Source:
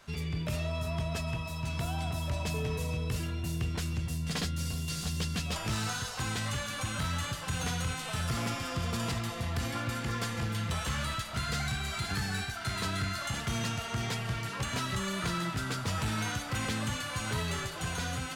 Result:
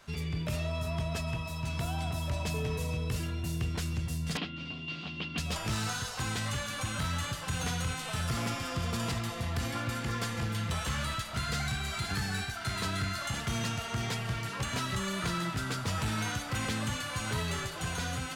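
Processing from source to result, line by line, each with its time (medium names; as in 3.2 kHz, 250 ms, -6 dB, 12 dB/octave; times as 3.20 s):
4.37–5.38 s: cabinet simulation 210–3400 Hz, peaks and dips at 300 Hz +6 dB, 480 Hz -7 dB, 1.7 kHz -6 dB, 2.8 kHz +7 dB
12.19–14.96 s: short-mantissa float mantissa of 6-bit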